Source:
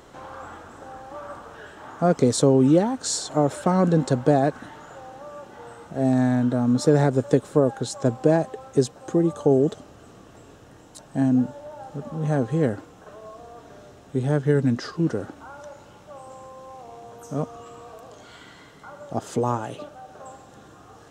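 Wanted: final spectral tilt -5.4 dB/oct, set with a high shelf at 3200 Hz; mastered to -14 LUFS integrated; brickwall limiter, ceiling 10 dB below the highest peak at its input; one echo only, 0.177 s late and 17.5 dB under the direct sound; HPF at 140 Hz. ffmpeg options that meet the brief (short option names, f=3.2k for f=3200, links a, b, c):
-af "highpass=140,highshelf=f=3.2k:g=4,alimiter=limit=-14.5dB:level=0:latency=1,aecho=1:1:177:0.133,volume=12dB"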